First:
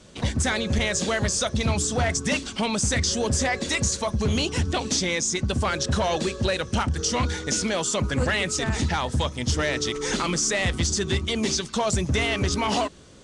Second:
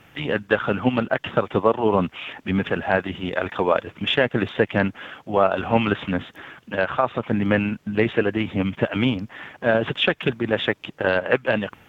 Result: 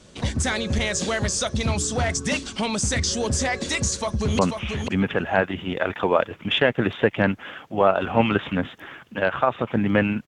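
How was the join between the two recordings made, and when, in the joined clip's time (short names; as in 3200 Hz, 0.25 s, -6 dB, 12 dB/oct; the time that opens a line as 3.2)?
first
3.92–4.39 echo throw 0.49 s, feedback 10%, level -5.5 dB
4.39 switch to second from 1.95 s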